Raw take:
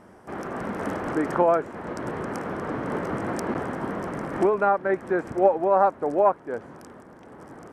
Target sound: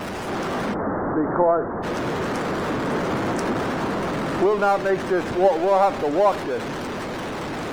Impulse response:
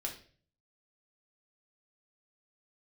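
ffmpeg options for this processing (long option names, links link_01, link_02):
-filter_complex "[0:a]aeval=exprs='val(0)+0.5*0.0631*sgn(val(0))':channel_layout=same,asplit=3[link_01][link_02][link_03];[link_01]afade=type=out:start_time=0.73:duration=0.02[link_04];[link_02]lowpass=frequency=1500:width=0.5412,lowpass=frequency=1500:width=1.3066,afade=type=in:start_time=0.73:duration=0.02,afade=type=out:start_time=1.82:duration=0.02[link_05];[link_03]afade=type=in:start_time=1.82:duration=0.02[link_06];[link_04][link_05][link_06]amix=inputs=3:normalize=0,asplit=2[link_07][link_08];[1:a]atrim=start_sample=2205,adelay=72[link_09];[link_08][link_09]afir=irnorm=-1:irlink=0,volume=-17.5dB[link_10];[link_07][link_10]amix=inputs=2:normalize=0,afftdn=noise_reduction=19:noise_floor=-43"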